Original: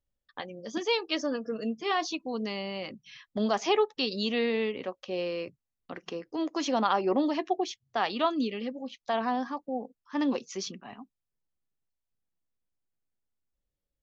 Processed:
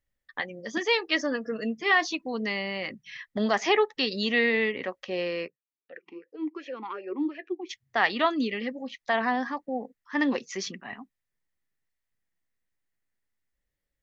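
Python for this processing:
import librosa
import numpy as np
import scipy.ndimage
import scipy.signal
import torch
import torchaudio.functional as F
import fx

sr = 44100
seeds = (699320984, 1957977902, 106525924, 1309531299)

y = fx.peak_eq(x, sr, hz=1900.0, db=13.5, octaves=0.45)
y = fx.vowel_sweep(y, sr, vowels='e-u', hz=2.7, at=(5.46, 7.69), fade=0.02)
y = y * librosa.db_to_amplitude(1.5)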